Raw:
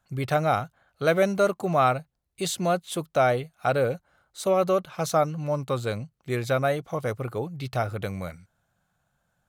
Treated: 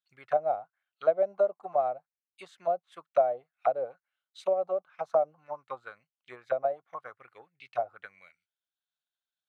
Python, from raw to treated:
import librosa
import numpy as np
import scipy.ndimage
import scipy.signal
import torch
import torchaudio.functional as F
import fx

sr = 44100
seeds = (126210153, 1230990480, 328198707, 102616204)

y = fx.dynamic_eq(x, sr, hz=730.0, q=4.9, threshold_db=-38.0, ratio=4.0, max_db=5)
y = fx.transient(y, sr, attack_db=8, sustain_db=-3)
y = fx.auto_wah(y, sr, base_hz=610.0, top_hz=3700.0, q=3.6, full_db=-15.0, direction='down')
y = F.gain(torch.from_numpy(y), -6.5).numpy()